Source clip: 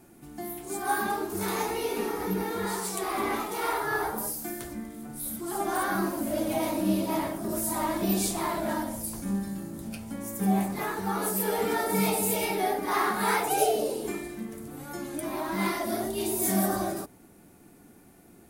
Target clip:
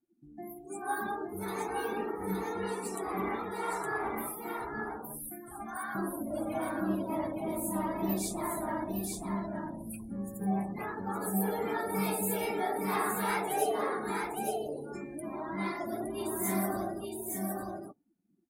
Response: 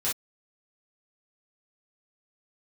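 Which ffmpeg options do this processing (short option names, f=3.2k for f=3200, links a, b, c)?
-filter_complex "[0:a]asettb=1/sr,asplit=3[a][b][c];[a]atrim=end=5.304[d];[b]atrim=start=5.3:end=5.95,asetpts=PTS-STARTPTS,afade=t=in:d=0.004:c=qsin,afade=t=out:st=0.646:d=0.004:c=qsin,highpass=1k[e];[c]atrim=start=5.946[f];[d][e]acrossfade=d=0.004:c1=hsin:c2=qsin[g];[g][f]acrossfade=d=0.004:c1=qsin:c2=hsin,afftdn=nr=31:nf=-38,aecho=1:1:865:0.668,volume=-6dB"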